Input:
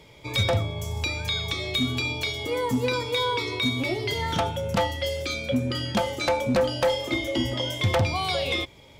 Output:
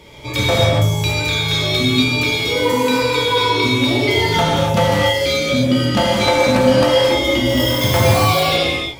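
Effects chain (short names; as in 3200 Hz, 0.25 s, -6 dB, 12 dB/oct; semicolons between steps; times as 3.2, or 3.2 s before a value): 2.59–3.02 HPF 430 Hz 6 dB/oct; in parallel at 0 dB: limiter -24 dBFS, peak gain reduction 7.5 dB; 7.49–8.28 on the sum: sample-rate reducer 8500 Hz, jitter 0%; non-linear reverb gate 0.31 s flat, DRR -6.5 dB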